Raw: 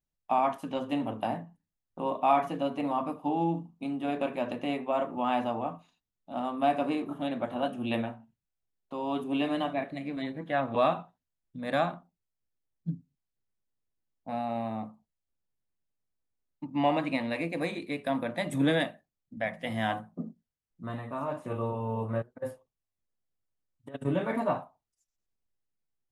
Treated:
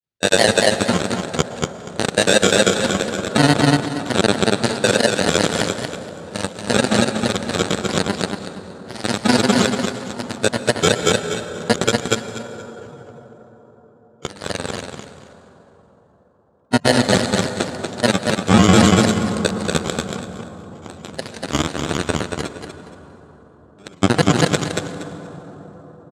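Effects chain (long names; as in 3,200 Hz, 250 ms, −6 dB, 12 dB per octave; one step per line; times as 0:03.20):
samples in bit-reversed order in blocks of 32 samples
notch filter 1,300 Hz, Q 6.3
granular cloud, pitch spread up and down by 3 semitones
harmonic generator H 7 −16 dB, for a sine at −13.5 dBFS
band-pass filter 140–7,500 Hz
repeating echo 234 ms, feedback 22%, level −5.5 dB
convolution reverb RT60 5.2 s, pre-delay 102 ms, DRR 12.5 dB
pitch shifter −5 semitones
boost into a limiter +25.5 dB
level −1 dB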